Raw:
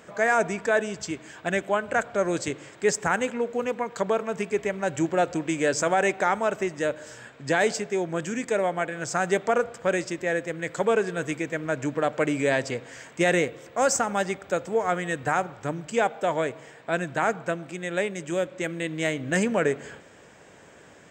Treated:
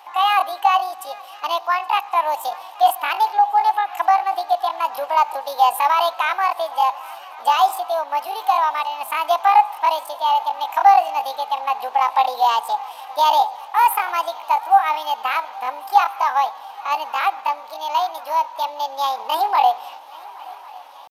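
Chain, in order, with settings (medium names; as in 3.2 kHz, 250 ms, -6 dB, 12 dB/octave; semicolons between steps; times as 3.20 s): resonant high-pass 470 Hz, resonance Q 4.9; pitch shift +9.5 st; shuffle delay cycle 1099 ms, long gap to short 3:1, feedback 71%, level -23 dB; trim -1 dB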